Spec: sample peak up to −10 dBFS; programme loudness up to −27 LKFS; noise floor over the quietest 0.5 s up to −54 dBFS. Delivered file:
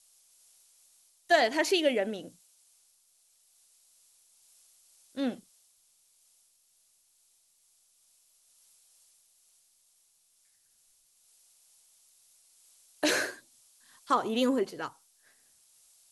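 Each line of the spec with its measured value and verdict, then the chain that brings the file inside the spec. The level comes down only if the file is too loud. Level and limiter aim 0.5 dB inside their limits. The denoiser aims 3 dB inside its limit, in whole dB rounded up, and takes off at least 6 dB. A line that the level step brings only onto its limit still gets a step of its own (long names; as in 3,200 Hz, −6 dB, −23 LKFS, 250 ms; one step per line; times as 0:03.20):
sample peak −12.0 dBFS: in spec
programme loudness −29.0 LKFS: in spec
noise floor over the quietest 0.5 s −68 dBFS: in spec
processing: no processing needed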